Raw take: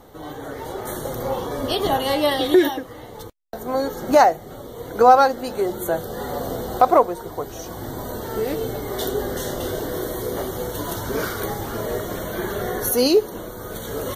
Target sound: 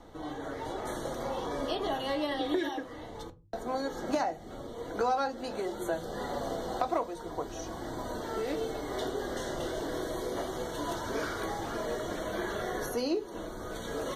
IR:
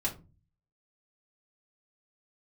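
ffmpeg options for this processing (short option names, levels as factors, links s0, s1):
-filter_complex "[0:a]lowpass=7100,acrossover=split=360|2100[s0][s1][s2];[s0]acompressor=threshold=0.0158:ratio=4[s3];[s1]acompressor=threshold=0.0501:ratio=4[s4];[s2]acompressor=threshold=0.0126:ratio=4[s5];[s3][s4][s5]amix=inputs=3:normalize=0,asplit=2[s6][s7];[1:a]atrim=start_sample=2205[s8];[s7][s8]afir=irnorm=-1:irlink=0,volume=0.376[s9];[s6][s9]amix=inputs=2:normalize=0,volume=0.398"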